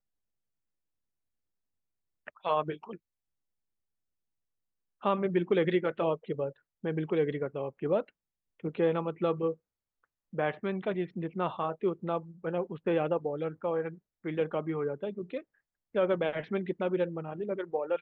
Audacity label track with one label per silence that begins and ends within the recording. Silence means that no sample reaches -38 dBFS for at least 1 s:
2.950000	5.030000	silence